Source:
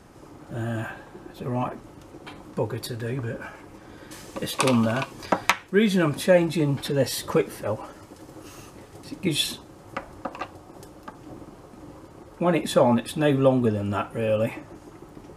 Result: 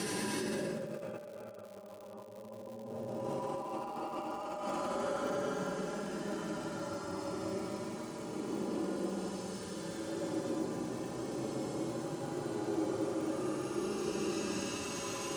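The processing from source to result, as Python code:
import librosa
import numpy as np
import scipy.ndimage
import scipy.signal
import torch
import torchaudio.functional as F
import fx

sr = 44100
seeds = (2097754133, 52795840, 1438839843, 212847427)

y = x + 0.63 * np.pad(x, (int(5.0 * sr / 1000.0), 0))[:len(x)]
y = fx.paulstretch(y, sr, seeds[0], factor=16.0, window_s=0.1, from_s=7.57)
y = fx.over_compress(y, sr, threshold_db=-40.0, ratio=-1.0)
y = fx.cabinet(y, sr, low_hz=110.0, low_slope=12, high_hz=9700.0, hz=(110.0, 200.0, 320.0, 530.0, 2000.0), db=(5, 5, 8, 4, -3))
y = fx.dmg_crackle(y, sr, seeds[1], per_s=180.0, level_db=-43.0)
y = y * 10.0 ** (-2.0 / 20.0)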